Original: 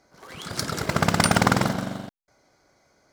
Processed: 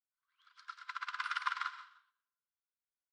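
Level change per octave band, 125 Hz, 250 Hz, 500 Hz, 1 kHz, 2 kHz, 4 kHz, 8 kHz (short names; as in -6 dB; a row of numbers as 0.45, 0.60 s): under -40 dB, under -40 dB, under -40 dB, -15.0 dB, -13.5 dB, -18.0 dB, -32.0 dB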